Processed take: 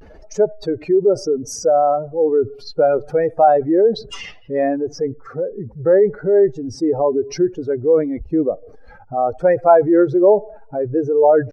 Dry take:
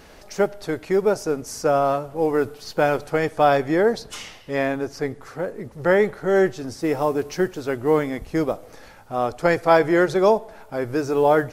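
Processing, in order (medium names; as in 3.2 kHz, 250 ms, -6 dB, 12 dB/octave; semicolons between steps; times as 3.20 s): spectral contrast enhancement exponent 2.2; vibrato 0.66 Hz 79 cents; trim +5 dB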